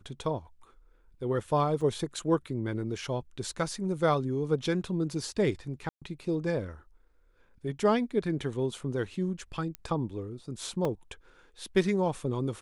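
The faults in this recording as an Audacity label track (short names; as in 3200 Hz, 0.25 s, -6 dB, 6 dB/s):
1.810000	1.810000	gap 4 ms
5.890000	6.020000	gap 0.126 s
9.750000	9.750000	pop -21 dBFS
10.850000	10.850000	gap 2.1 ms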